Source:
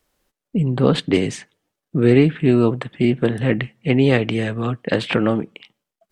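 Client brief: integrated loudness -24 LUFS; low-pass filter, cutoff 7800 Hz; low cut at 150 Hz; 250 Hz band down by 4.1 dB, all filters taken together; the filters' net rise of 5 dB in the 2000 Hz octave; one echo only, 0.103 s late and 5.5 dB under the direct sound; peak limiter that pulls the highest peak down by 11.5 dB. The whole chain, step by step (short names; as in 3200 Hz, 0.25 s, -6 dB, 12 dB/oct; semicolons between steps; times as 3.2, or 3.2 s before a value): HPF 150 Hz; LPF 7800 Hz; bell 250 Hz -4.5 dB; bell 2000 Hz +6 dB; limiter -13.5 dBFS; echo 0.103 s -5.5 dB; gain +0.5 dB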